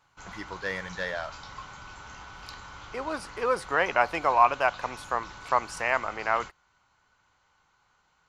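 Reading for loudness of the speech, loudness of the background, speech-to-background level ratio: −28.0 LKFS, −43.5 LKFS, 15.5 dB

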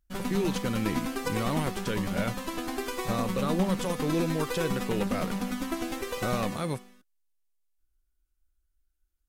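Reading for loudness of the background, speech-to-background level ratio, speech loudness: −33.0 LKFS, 1.0 dB, −32.0 LKFS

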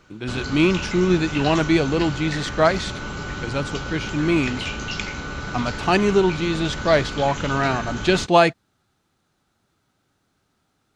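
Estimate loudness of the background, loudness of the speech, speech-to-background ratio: −30.0 LKFS, −21.5 LKFS, 8.5 dB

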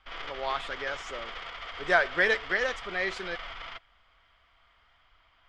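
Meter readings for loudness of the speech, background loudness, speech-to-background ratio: −29.0 LKFS, −39.5 LKFS, 10.5 dB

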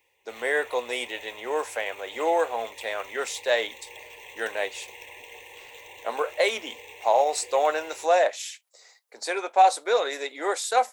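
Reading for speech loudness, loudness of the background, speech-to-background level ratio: −26.0 LKFS, −43.5 LKFS, 17.5 dB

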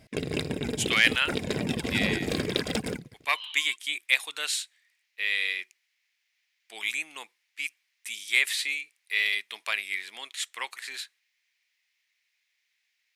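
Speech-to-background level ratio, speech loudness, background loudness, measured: 3.0 dB, −28.0 LKFS, −31.0 LKFS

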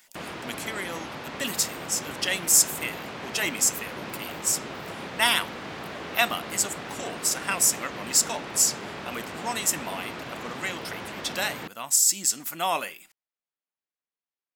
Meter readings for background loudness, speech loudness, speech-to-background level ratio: −37.0 LKFS, −25.0 LKFS, 12.0 dB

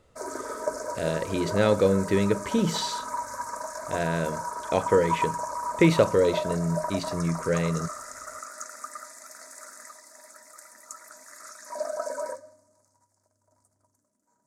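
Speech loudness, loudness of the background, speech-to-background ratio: −26.0 LKFS, −34.0 LKFS, 8.0 dB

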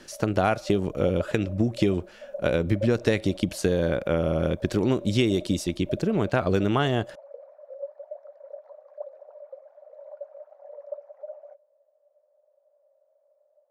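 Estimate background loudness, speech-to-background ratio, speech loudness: −42.0 LKFS, 16.5 dB, −25.5 LKFS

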